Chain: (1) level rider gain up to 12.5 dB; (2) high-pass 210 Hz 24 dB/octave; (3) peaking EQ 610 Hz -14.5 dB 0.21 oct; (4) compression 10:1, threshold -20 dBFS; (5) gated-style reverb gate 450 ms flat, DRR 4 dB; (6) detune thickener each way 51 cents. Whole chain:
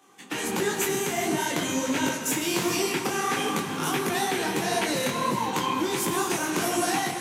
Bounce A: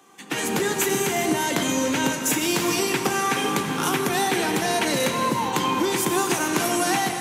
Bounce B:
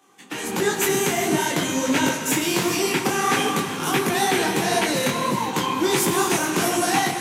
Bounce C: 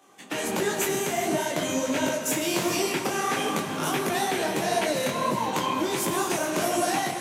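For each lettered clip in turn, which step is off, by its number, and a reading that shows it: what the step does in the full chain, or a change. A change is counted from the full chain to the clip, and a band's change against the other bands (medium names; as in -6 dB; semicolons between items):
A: 6, loudness change +3.5 LU; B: 4, mean gain reduction 4.0 dB; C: 3, 500 Hz band +2.5 dB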